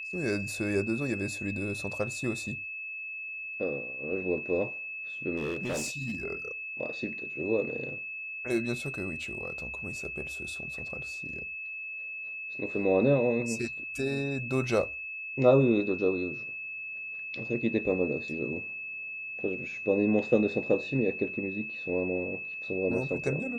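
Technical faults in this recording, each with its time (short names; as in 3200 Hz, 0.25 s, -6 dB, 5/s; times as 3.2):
tone 2600 Hz -36 dBFS
5.36–6.16 clipped -28 dBFS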